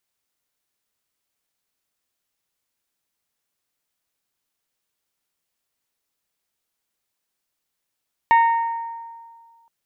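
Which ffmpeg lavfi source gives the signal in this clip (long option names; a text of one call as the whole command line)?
ffmpeg -f lavfi -i "aevalsrc='0.316*pow(10,-3*t/1.83)*sin(2*PI*923*t)+0.112*pow(10,-3*t/1.126)*sin(2*PI*1846*t)+0.0398*pow(10,-3*t/0.992)*sin(2*PI*2215.2*t)+0.0141*pow(10,-3*t/0.848)*sin(2*PI*2769*t)+0.00501*pow(10,-3*t/0.693)*sin(2*PI*3692*t)':duration=1.37:sample_rate=44100" out.wav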